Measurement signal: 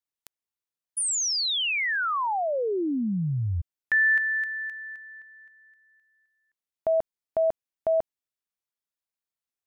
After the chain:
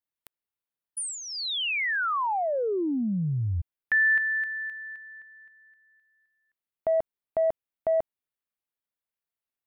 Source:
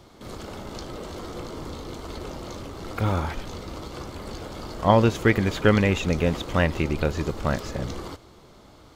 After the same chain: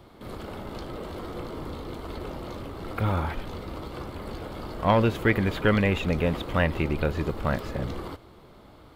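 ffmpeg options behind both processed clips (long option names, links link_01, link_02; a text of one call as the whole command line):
ffmpeg -i in.wav -filter_complex "[0:a]equalizer=frequency=6300:width=1.4:gain=-13,acrossover=split=1100[link_01][link_02];[link_01]asoftclip=type=tanh:threshold=-16dB[link_03];[link_03][link_02]amix=inputs=2:normalize=0" out.wav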